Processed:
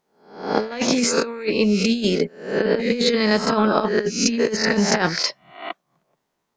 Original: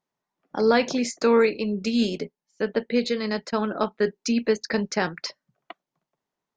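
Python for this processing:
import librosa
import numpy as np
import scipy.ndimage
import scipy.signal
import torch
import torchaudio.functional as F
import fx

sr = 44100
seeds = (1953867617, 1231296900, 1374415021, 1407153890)

y = fx.spec_swells(x, sr, rise_s=0.53)
y = fx.over_compress(y, sr, threshold_db=-24.0, ratio=-0.5)
y = F.gain(torch.from_numpy(y), 5.5).numpy()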